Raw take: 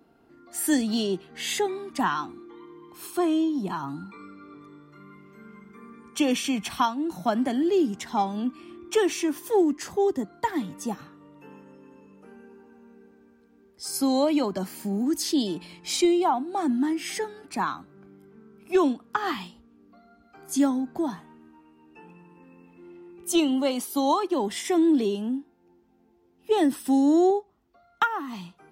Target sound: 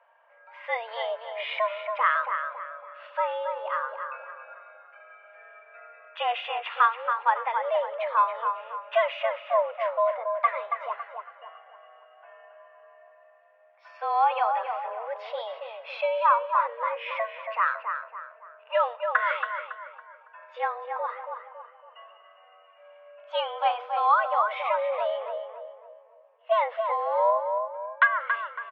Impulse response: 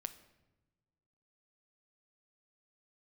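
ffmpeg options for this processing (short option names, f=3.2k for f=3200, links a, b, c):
-filter_complex "[0:a]highpass=f=460:t=q:w=0.5412,highpass=f=460:t=q:w=1.307,lowpass=f=2.6k:t=q:w=0.5176,lowpass=f=2.6k:t=q:w=0.7071,lowpass=f=2.6k:t=q:w=1.932,afreqshift=230,asplit=2[a][b];[b]adelay=278,lowpass=f=1.9k:p=1,volume=-5dB,asplit=2[c][d];[d]adelay=278,lowpass=f=1.9k:p=1,volume=0.43,asplit=2[e][f];[f]adelay=278,lowpass=f=1.9k:p=1,volume=0.43,asplit=2[g][h];[h]adelay=278,lowpass=f=1.9k:p=1,volume=0.43,asplit=2[i][j];[j]adelay=278,lowpass=f=1.9k:p=1,volume=0.43[k];[a][c][e][g][i][k]amix=inputs=6:normalize=0,asplit=2[l][m];[1:a]atrim=start_sample=2205[n];[m][n]afir=irnorm=-1:irlink=0,volume=-3.5dB[o];[l][o]amix=inputs=2:normalize=0"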